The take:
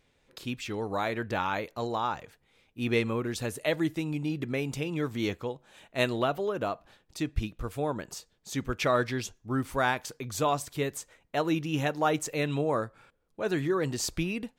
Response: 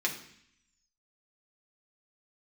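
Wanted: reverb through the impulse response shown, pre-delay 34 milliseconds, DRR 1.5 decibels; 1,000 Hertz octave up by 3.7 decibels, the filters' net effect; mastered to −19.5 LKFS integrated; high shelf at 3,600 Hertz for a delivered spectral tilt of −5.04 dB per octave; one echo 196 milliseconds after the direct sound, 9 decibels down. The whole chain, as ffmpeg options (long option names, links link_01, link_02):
-filter_complex "[0:a]equalizer=frequency=1000:width_type=o:gain=5.5,highshelf=frequency=3600:gain=-8,aecho=1:1:196:0.355,asplit=2[link_01][link_02];[1:a]atrim=start_sample=2205,adelay=34[link_03];[link_02][link_03]afir=irnorm=-1:irlink=0,volume=-8.5dB[link_04];[link_01][link_04]amix=inputs=2:normalize=0,volume=8dB"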